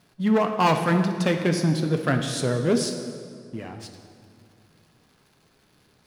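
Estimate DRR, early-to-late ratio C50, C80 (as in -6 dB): 5.0 dB, 7.0 dB, 8.0 dB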